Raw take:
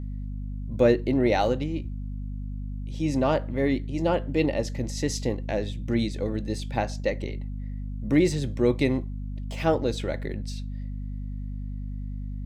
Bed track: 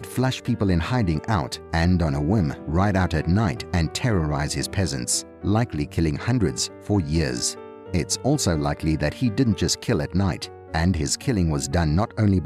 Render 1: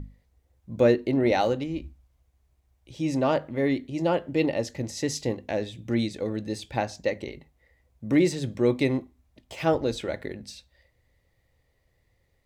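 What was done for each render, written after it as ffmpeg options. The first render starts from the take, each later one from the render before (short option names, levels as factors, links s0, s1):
-af "bandreject=f=50:t=h:w=6,bandreject=f=100:t=h:w=6,bandreject=f=150:t=h:w=6,bandreject=f=200:t=h:w=6,bandreject=f=250:t=h:w=6"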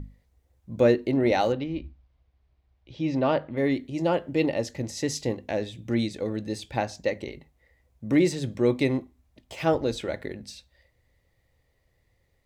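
-filter_complex "[0:a]asettb=1/sr,asplit=3[s0][s1][s2];[s0]atrim=end=1.524[s3];[s1]atrim=start=1.52:end=3.57,asetpts=PTS-STARTPTS,afade=t=in:d=0.004:c=qsin,afade=t=out:st=2.046:d=0.004:c=qsin,lowpass=f=4600:w=0.5412,lowpass=f=4600:w=1.3066[s4];[s2]atrim=start=3.566[s5];[s3][s4]acrossfade=d=0.004:c1=hsin:c2=qsin[s6];[s6][s5]acrossfade=d=0.004:c1=qsin:c2=hsin"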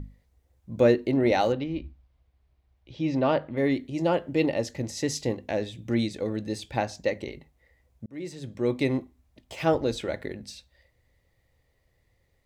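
-filter_complex "[0:a]asplit=2[s0][s1];[s0]atrim=end=8.06,asetpts=PTS-STARTPTS,afade=t=out:st=8.056:d=0.004:c=hsin[s2];[s1]atrim=start=8.06,asetpts=PTS-STARTPTS,afade=t=in:d=0.93[s3];[s2][s3]concat=n=2:v=0:a=1"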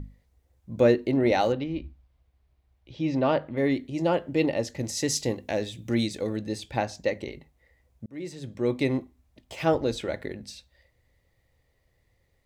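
-filter_complex "[0:a]asettb=1/sr,asplit=3[s0][s1][s2];[s0]atrim=end=4.794[s3];[s1]atrim=start=4.79:end=6.38,asetpts=PTS-STARTPTS,afade=t=in:d=0.004:c=qsin,afade=t=out:st=1.586:d=0.004:c=qsin,highshelf=f=4700:g=8.5[s4];[s2]atrim=start=6.376[s5];[s3][s4]acrossfade=d=0.004:c1=hsin:c2=qsin[s6];[s6][s5]acrossfade=d=0.004:c1=qsin:c2=hsin"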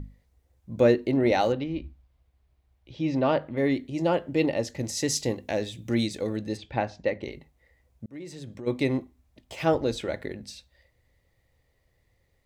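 -filter_complex "[0:a]asplit=3[s0][s1][s2];[s0]afade=t=out:st=6.56:d=0.02[s3];[s1]lowpass=3200,afade=t=in:st=6.56:d=0.02,afade=t=out:st=7.22:d=0.02[s4];[s2]afade=t=in:st=7.22:d=0.02[s5];[s3][s4][s5]amix=inputs=3:normalize=0,asplit=3[s6][s7][s8];[s6]afade=t=out:st=8.1:d=0.02[s9];[s7]acompressor=threshold=0.0178:ratio=10:attack=3.2:release=140:knee=1:detection=peak,afade=t=in:st=8.1:d=0.02,afade=t=out:st=8.66:d=0.02[s10];[s8]afade=t=in:st=8.66:d=0.02[s11];[s9][s10][s11]amix=inputs=3:normalize=0"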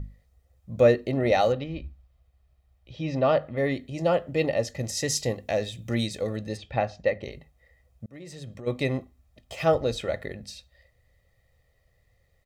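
-af "aecho=1:1:1.6:0.51"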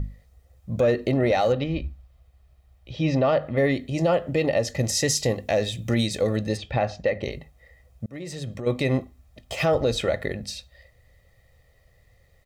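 -af "acontrast=89,alimiter=limit=0.211:level=0:latency=1:release=115"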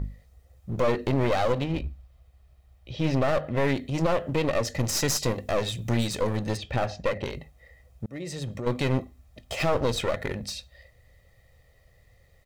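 -af "aeval=exprs='clip(val(0),-1,0.0316)':c=same"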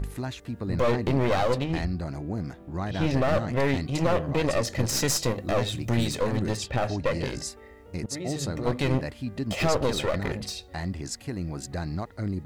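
-filter_complex "[1:a]volume=0.282[s0];[0:a][s0]amix=inputs=2:normalize=0"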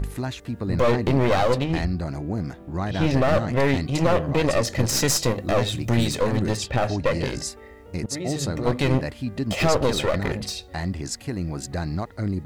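-af "volume=1.58"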